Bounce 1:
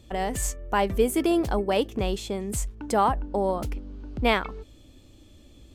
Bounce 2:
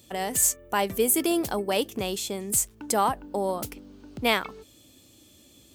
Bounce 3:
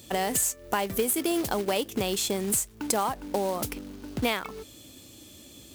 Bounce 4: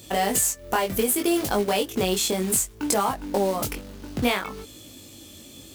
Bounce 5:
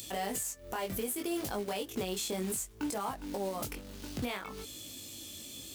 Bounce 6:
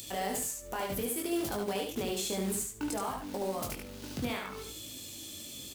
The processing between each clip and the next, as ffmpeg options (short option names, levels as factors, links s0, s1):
-af "highpass=120,aemphasis=mode=production:type=75kf,volume=0.75"
-af "acompressor=threshold=0.0316:ratio=6,acrusher=bits=3:mode=log:mix=0:aa=0.000001,volume=2"
-filter_complex "[0:a]flanger=delay=19.5:depth=2.5:speed=0.64,asplit=2[s0][s1];[s1]asoftclip=type=hard:threshold=0.0562,volume=0.355[s2];[s0][s2]amix=inputs=2:normalize=0,volume=1.68"
-filter_complex "[0:a]acrossover=split=2300[s0][s1];[s1]acompressor=mode=upward:threshold=0.0251:ratio=2.5[s2];[s0][s2]amix=inputs=2:normalize=0,alimiter=limit=0.106:level=0:latency=1:release=227,volume=0.501"
-af "aecho=1:1:73|146|219:0.631|0.139|0.0305"